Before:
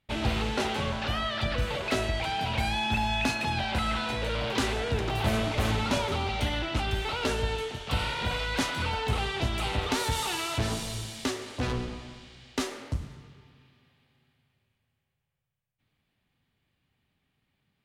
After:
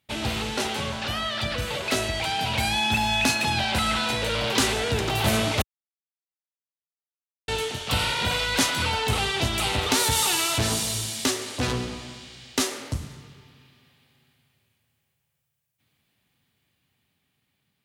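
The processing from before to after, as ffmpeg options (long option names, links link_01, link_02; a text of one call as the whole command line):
ffmpeg -i in.wav -filter_complex "[0:a]asplit=3[link_01][link_02][link_03];[link_01]atrim=end=5.62,asetpts=PTS-STARTPTS,afade=type=out:start_time=5.616:duration=0.004:curve=hsin[link_04];[link_02]atrim=start=5.62:end=7.48,asetpts=PTS-STARTPTS,volume=0[link_05];[link_03]atrim=start=7.48,asetpts=PTS-STARTPTS,afade=type=in:duration=0.004:curve=hsin[link_06];[link_04][link_05][link_06]concat=n=3:v=0:a=1,highpass=73,highshelf=frequency=4500:gain=11.5,dynaudnorm=framelen=910:gausssize=5:maxgain=4dB" out.wav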